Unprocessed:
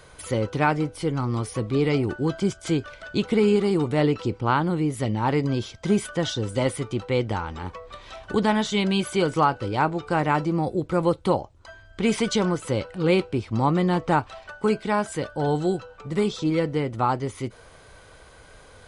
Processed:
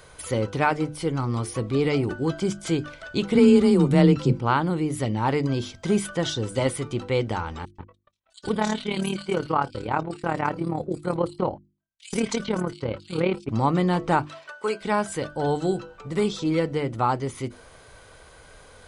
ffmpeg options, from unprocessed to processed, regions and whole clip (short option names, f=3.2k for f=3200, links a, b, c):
-filter_complex "[0:a]asettb=1/sr,asplit=3[a][b][c];[a]atrim=end=3.354[d];[b]atrim=start=3.35:end=4.38,asetpts=PTS-STARTPTS,afade=t=in:d=0.004:c=qsin,afade=t=out:st=1.026:d=0.004:c=qsin,bass=f=250:g=10,treble=f=4k:g=3,afreqshift=23[e];[c]atrim=start=4.376[f];[d][e]acrossfade=d=0.004:c1=hsin:c2=qsin[g];[g][f]acrossfade=d=0.004:c1=qsin:c2=hsin,asettb=1/sr,asplit=3[h][i][j];[h]atrim=end=7.654[k];[i]atrim=start=7.65:end=13.49,asetpts=PTS-STARTPTS,afade=t=in:d=0.004:c=qsin,afade=t=out:st=5.836:d=0.004:c=qsin,agate=range=-48dB:threshold=-36dB:ratio=16:release=100:detection=peak,tremolo=f=37:d=0.71,acrossover=split=3500[l][m];[l]adelay=130[n];[n][m]amix=inputs=2:normalize=0,atrim=end_sample=257544[o];[j]atrim=start=13.486[p];[k][o]acrossfade=d=0.004:c1=hsin:c2=qsin[q];[q][p]acrossfade=d=0.004:c1=qsin:c2=hsin,asettb=1/sr,asplit=3[r][s][t];[r]atrim=end=14.254[u];[s]atrim=start=14.25:end=14.81,asetpts=PTS-STARTPTS,afade=t=in:d=0.004:c=qsin,afade=t=out:st=0.556:d=0.004:c=qsin,highpass=430,bandreject=f=770:w=5.8[v];[t]atrim=start=14.806[w];[u][v]acrossfade=d=0.004:c1=hsin:c2=qsin[x];[x][w]acrossfade=d=0.004:c1=qsin:c2=hsin,highshelf=f=10k:g=5,bandreject=f=50:t=h:w=6,bandreject=f=100:t=h:w=6,bandreject=f=150:t=h:w=6,bandreject=f=200:t=h:w=6,bandreject=f=250:t=h:w=6,bandreject=f=300:t=h:w=6,bandreject=f=350:t=h:w=6"